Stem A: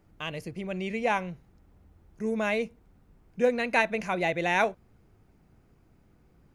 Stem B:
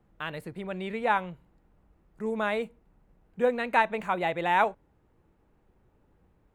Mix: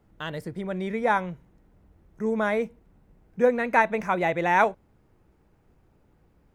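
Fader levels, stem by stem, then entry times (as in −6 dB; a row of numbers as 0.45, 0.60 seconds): −4.5, +1.0 decibels; 0.00, 0.00 seconds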